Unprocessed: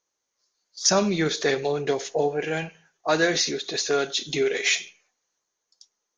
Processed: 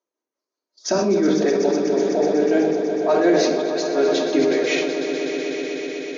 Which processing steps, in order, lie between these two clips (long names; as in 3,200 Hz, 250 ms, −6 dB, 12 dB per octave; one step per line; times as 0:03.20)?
low-pass filter 6,400 Hz 12 dB per octave
noise gate −46 dBFS, range −7 dB
high-pass filter 240 Hz 24 dB per octave
tilt shelving filter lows +9 dB
brickwall limiter −14 dBFS, peak gain reduction 8 dB
amplitude tremolo 5.5 Hz, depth 84%
on a send: echo that builds up and dies away 124 ms, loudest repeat 5, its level −12 dB
on the sum: rectangular room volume 3,200 cubic metres, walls furnished, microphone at 2.8 metres
level that may fall only so fast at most 26 dB per second
level +3 dB